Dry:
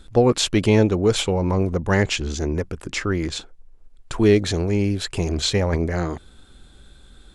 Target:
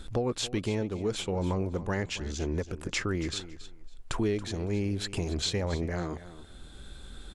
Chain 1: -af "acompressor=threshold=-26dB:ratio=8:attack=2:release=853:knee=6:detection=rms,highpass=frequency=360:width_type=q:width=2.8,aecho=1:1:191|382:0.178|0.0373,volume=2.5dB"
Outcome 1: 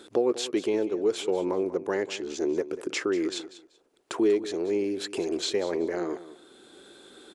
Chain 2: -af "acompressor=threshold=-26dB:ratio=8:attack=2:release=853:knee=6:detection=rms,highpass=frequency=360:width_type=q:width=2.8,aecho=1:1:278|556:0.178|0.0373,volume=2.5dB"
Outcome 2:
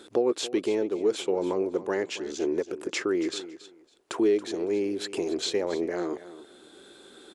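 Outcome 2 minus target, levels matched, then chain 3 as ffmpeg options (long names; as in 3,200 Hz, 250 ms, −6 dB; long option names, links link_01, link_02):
500 Hz band +4.0 dB
-af "acompressor=threshold=-26dB:ratio=8:attack=2:release=853:knee=6:detection=rms,aecho=1:1:278|556:0.178|0.0373,volume=2.5dB"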